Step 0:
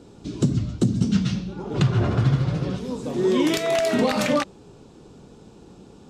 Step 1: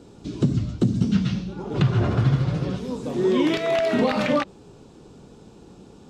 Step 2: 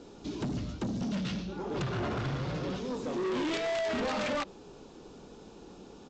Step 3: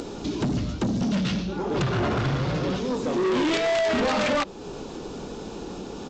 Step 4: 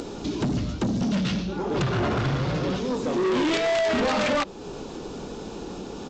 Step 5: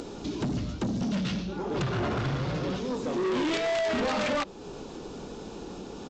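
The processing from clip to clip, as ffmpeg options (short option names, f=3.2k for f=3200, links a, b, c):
-filter_complex "[0:a]acrossover=split=4300[a][b];[b]acompressor=threshold=-49dB:ratio=4:attack=1:release=60[c];[a][c]amix=inputs=2:normalize=0"
-af "equalizer=f=110:w=0.85:g=-11,aresample=16000,asoftclip=type=tanh:threshold=-29.5dB,aresample=44100"
-af "acompressor=mode=upward:threshold=-36dB:ratio=2.5,volume=8.5dB"
-af anull
-af "aresample=32000,aresample=44100,volume=-4.5dB"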